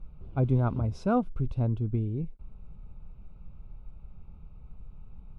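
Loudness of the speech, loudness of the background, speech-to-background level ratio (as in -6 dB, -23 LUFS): -29.5 LUFS, -44.5 LUFS, 15.0 dB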